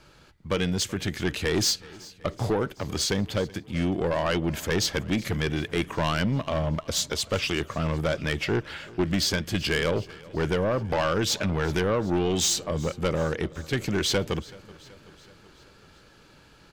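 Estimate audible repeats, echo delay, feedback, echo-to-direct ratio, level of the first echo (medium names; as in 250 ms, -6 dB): 4, 378 ms, 60%, -19.5 dB, -21.5 dB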